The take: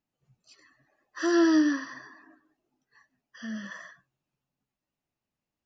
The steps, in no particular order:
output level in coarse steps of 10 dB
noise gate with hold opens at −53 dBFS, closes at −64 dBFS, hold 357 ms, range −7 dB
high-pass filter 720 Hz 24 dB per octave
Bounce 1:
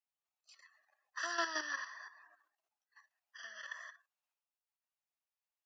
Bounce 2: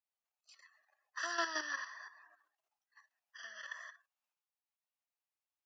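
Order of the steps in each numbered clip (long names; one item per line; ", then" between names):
output level in coarse steps, then high-pass filter, then noise gate with hold
output level in coarse steps, then noise gate with hold, then high-pass filter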